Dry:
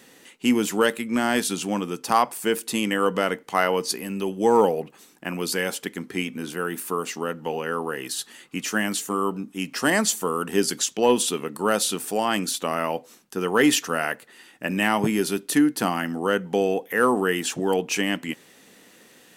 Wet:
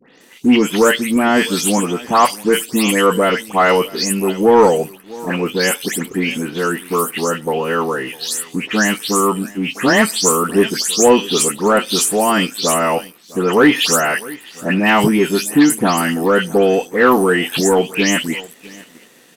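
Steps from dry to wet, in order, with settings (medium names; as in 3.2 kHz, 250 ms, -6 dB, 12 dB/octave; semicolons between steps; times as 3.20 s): delay that grows with frequency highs late, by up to 209 ms; delay 654 ms -21 dB; waveshaping leveller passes 1; trim +6 dB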